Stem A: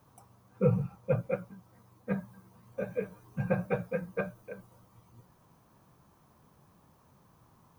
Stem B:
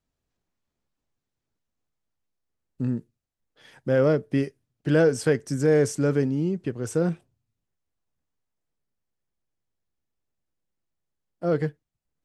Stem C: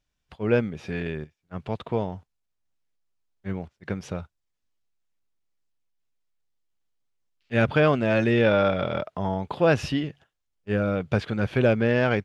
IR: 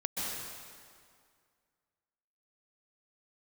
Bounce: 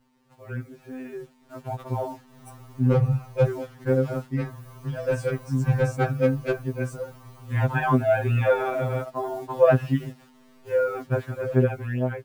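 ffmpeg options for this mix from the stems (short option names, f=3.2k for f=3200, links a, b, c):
-filter_complex "[0:a]alimiter=limit=-22.5dB:level=0:latency=1:release=277,asoftclip=type=hard:threshold=-28dB,adelay=2300,volume=2dB[a];[1:a]lowshelf=f=390:g=8.5,alimiter=limit=-12dB:level=0:latency=1:release=323,volume=-17dB[b];[2:a]lowpass=1.5k,aeval=exprs='val(0)+0.00251*(sin(2*PI*50*n/s)+sin(2*PI*2*50*n/s)/2+sin(2*PI*3*50*n/s)/3+sin(2*PI*4*50*n/s)/4+sin(2*PI*5*50*n/s)/5)':c=same,acrusher=bits=8:mix=0:aa=0.000001,volume=-6.5dB,asplit=2[c][d];[d]apad=whole_len=444904[e];[a][e]sidechaincompress=threshold=-46dB:ratio=8:attack=5.1:release=329[f];[f][b][c]amix=inputs=3:normalize=0,dynaudnorm=f=590:g=5:m=12dB,afftfilt=real='re*2.45*eq(mod(b,6),0)':imag='im*2.45*eq(mod(b,6),0)':win_size=2048:overlap=0.75"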